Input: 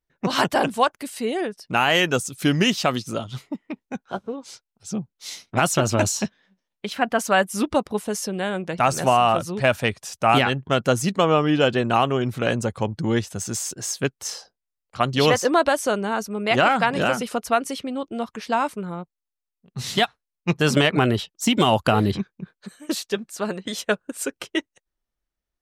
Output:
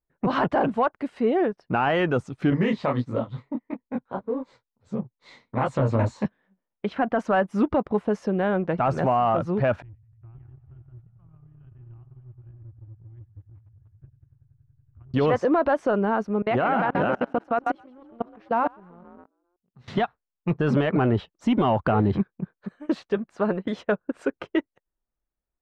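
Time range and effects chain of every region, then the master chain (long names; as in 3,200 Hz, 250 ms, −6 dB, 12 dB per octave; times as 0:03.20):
0:02.50–0:06.25: EQ curve with evenly spaced ripples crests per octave 1, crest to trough 8 dB + micro pitch shift up and down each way 54 cents
0:09.82–0:15.14: inverse Chebyshev band-stop filter 200–8,800 Hz, stop band 50 dB + delay with a low-pass on its return 94 ms, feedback 83%, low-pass 2,800 Hz, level −11 dB + multiband upward and downward compressor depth 70%
0:16.42–0:19.88: echo with shifted repeats 133 ms, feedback 32%, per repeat +44 Hz, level −7.5 dB + output level in coarse steps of 24 dB
whole clip: leveller curve on the samples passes 1; low-pass filter 1,400 Hz 12 dB per octave; brickwall limiter −13.5 dBFS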